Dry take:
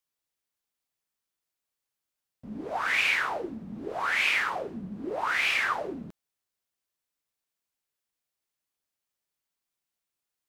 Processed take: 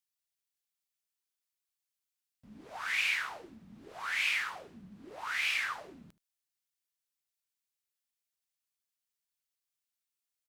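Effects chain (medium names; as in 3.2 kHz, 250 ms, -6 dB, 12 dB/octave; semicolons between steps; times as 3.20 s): amplifier tone stack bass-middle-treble 5-5-5; on a send: delay 75 ms -19.5 dB; on the sum: trim +3.5 dB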